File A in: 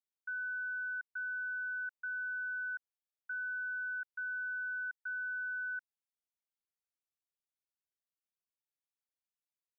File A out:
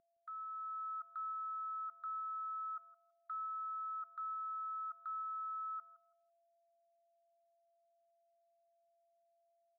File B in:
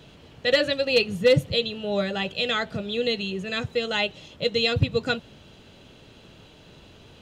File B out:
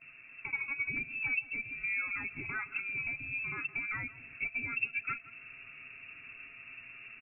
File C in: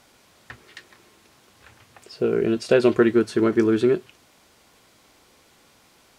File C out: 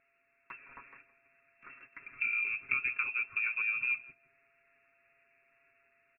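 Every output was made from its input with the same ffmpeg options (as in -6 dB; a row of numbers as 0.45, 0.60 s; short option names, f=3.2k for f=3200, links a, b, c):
-filter_complex "[0:a]aecho=1:1:7.1:0.78,acompressor=threshold=-34dB:ratio=3,lowpass=f=2.4k:t=q:w=0.5098,lowpass=f=2.4k:t=q:w=0.6013,lowpass=f=2.4k:t=q:w=0.9,lowpass=f=2.4k:t=q:w=2.563,afreqshift=-2800,agate=range=-12dB:threshold=-52dB:ratio=16:detection=peak,aeval=exprs='val(0)+0.00126*sin(2*PI*680*n/s)':c=same,equalizer=f=450:t=o:w=0.87:g=-4.5,asplit=2[a][b];[b]adelay=165,lowpass=f=1k:p=1,volume=-14dB,asplit=2[c][d];[d]adelay=165,lowpass=f=1k:p=1,volume=0.27,asplit=2[e][f];[f]adelay=165,lowpass=f=1k:p=1,volume=0.27[g];[a][c][e][g]amix=inputs=4:normalize=0,dynaudnorm=f=110:g=11:m=4.5dB,firequalizer=gain_entry='entry(410,0);entry(730,-17);entry(1300,-1)':delay=0.05:min_phase=1,volume=-4.5dB"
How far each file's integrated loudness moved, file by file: -4.5, -10.5, -11.0 LU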